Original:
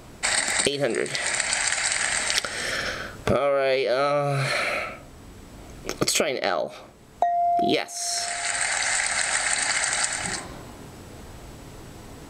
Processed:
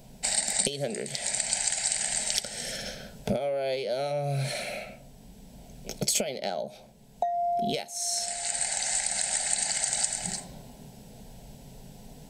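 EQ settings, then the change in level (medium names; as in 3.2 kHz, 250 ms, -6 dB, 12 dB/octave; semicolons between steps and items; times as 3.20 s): graphic EQ 500/2000/4000/8000 Hz -7/-8/-3/-5 dB; dynamic bell 8 kHz, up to +5 dB, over -45 dBFS, Q 1.2; static phaser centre 320 Hz, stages 6; 0.0 dB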